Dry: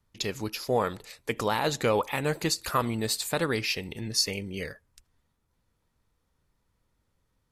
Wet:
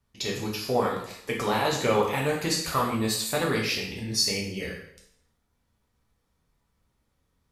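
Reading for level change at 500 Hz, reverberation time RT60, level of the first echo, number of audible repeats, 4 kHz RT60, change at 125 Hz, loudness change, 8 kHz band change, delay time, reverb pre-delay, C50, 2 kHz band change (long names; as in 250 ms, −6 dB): +2.0 dB, 0.75 s, no echo audible, no echo audible, 0.70 s, +1.5 dB, +2.0 dB, +2.0 dB, no echo audible, 4 ms, 4.5 dB, +2.0 dB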